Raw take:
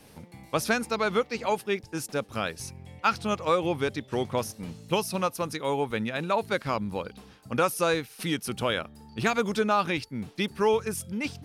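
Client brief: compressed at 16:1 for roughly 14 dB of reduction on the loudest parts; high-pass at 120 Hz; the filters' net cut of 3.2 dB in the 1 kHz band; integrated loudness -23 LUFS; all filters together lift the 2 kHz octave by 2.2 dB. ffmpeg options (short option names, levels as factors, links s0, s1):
-af "highpass=120,equalizer=f=1000:t=o:g=-6,equalizer=f=2000:t=o:g=5,acompressor=threshold=0.02:ratio=16,volume=6.68"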